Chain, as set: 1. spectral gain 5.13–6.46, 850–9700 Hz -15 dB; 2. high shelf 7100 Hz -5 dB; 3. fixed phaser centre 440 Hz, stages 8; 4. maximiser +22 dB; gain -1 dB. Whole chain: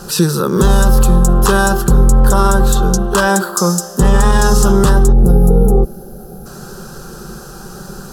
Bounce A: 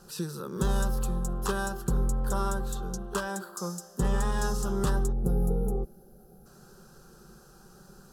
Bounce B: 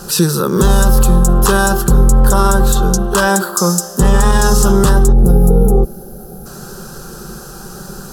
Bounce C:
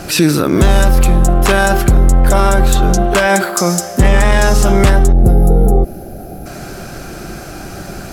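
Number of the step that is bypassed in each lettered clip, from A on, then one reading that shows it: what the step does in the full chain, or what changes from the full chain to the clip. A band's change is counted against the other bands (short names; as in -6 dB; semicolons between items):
4, crest factor change +6.0 dB; 2, 8 kHz band +2.0 dB; 3, 2 kHz band +3.0 dB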